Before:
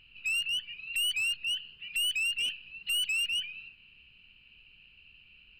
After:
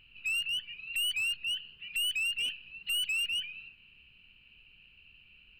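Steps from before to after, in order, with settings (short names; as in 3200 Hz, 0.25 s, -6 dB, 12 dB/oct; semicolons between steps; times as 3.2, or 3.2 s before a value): bell 5600 Hz -6 dB 1.1 oct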